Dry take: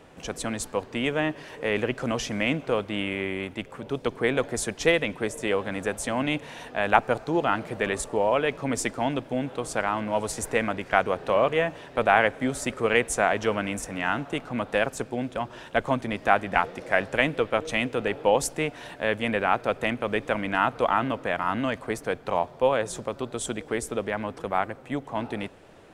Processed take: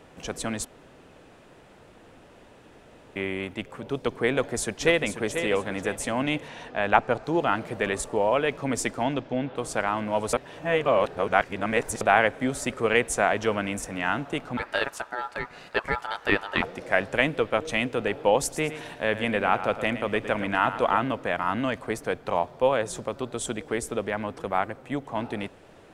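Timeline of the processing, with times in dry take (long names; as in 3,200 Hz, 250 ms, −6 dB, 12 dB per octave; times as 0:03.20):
0:00.65–0:03.16: fill with room tone
0:04.33–0:05.23: delay throw 490 ms, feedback 30%, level −8.5 dB
0:06.48–0:07.24: high-frequency loss of the air 55 metres
0:09.03–0:09.55: low-pass filter 8,700 Hz → 4,200 Hz 24 dB per octave
0:10.33–0:12.01: reverse
0:14.57–0:16.62: ring modulation 1,100 Hz
0:18.40–0:20.99: repeating echo 111 ms, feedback 38%, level −12 dB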